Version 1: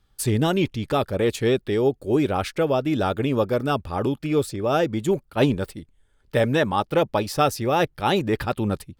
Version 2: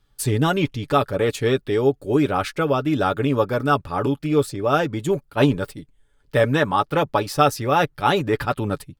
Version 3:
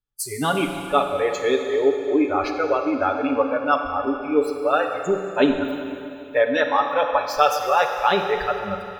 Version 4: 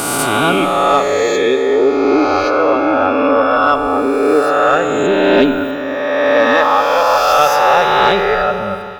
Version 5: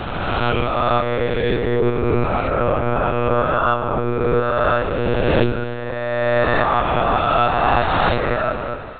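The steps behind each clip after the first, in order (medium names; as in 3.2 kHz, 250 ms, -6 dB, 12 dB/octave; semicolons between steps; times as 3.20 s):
comb 7 ms, depth 45%; dynamic bell 1.3 kHz, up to +6 dB, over -37 dBFS, Q 1.7
spectral noise reduction 25 dB; Schroeder reverb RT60 2.8 s, combs from 33 ms, DRR 4.5 dB
reverse spectral sustain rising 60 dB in 2.38 s; saturation -4.5 dBFS, distortion -24 dB; trim +4 dB
monotone LPC vocoder at 8 kHz 120 Hz; trim -5.5 dB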